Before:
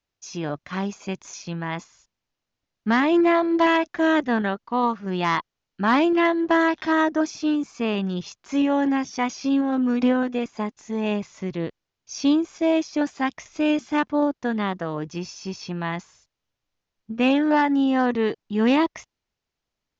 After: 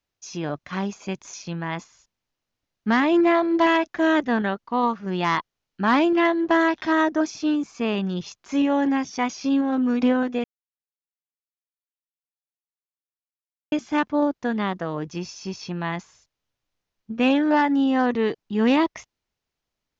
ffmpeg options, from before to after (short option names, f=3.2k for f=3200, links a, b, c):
-filter_complex "[0:a]asplit=3[a][b][c];[a]atrim=end=10.44,asetpts=PTS-STARTPTS,afade=t=out:st=10.436:d=0.004:c=hsin[d];[b]atrim=start=10.44:end=13.72,asetpts=PTS-STARTPTS,volume=0[e];[c]atrim=start=13.72,asetpts=PTS-STARTPTS,afade=t=in:d=0.004:c=hsin[f];[d][e][f]concat=n=3:v=0:a=1"